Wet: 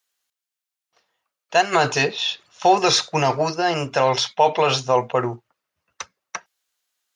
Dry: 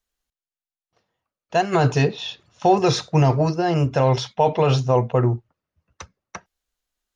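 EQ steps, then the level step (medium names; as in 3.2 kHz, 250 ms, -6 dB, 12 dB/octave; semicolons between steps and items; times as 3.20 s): high-pass 1.2 kHz 6 dB/octave; +8.0 dB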